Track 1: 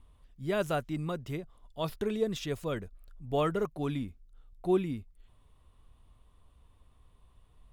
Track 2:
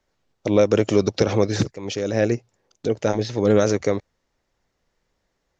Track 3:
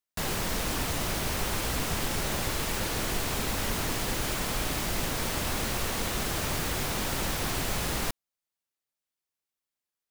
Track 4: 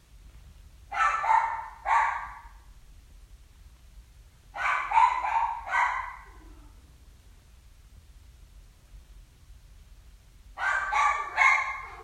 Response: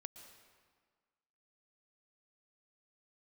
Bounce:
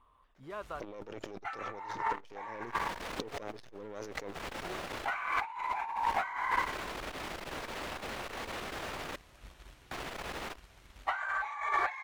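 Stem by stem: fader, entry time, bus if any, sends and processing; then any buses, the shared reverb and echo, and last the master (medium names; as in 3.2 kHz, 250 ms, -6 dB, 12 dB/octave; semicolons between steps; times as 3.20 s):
-10.5 dB, 0.00 s, no send, compression 5:1, threshold -40 dBFS, peak gain reduction 16.5 dB; peaking EQ 1.1 kHz +14 dB 0.65 oct
+1.0 dB, 0.35 s, no send, partial rectifier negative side -12 dB
-11.5 dB, 2.45 s, muted 9.16–9.91 s, no send, treble shelf 9.3 kHz -11 dB; hard clipper -27.5 dBFS, distortion -14 dB
-1.0 dB, 0.50 s, no send, waveshaping leveller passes 1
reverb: none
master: tone controls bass -12 dB, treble -9 dB; compressor with a negative ratio -35 dBFS, ratio -1; transformer saturation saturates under 1.1 kHz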